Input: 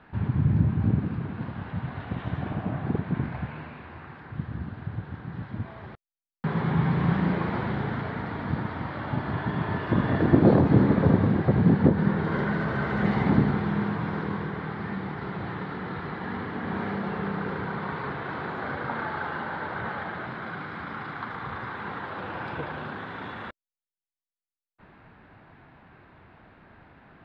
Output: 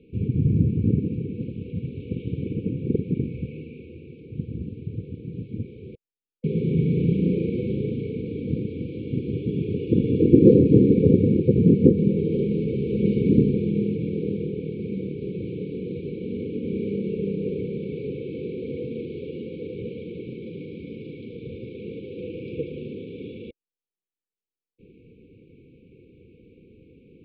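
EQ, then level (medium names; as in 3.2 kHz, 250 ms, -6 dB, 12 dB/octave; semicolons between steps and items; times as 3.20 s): brick-wall FIR band-stop 520–2200 Hz; distance through air 300 m; peaking EQ 670 Hz +11.5 dB 2.4 oct; 0.0 dB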